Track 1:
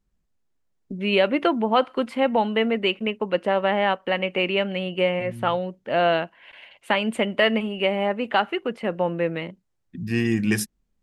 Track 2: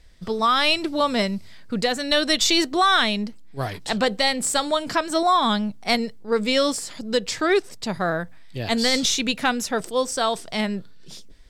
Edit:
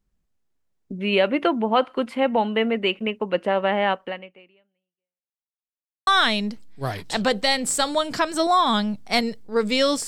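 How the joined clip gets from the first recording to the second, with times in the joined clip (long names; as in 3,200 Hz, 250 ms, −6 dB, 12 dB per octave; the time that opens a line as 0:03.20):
track 1
0:04.01–0:05.48: fade out exponential
0:05.48–0:06.07: silence
0:06.07: continue with track 2 from 0:02.83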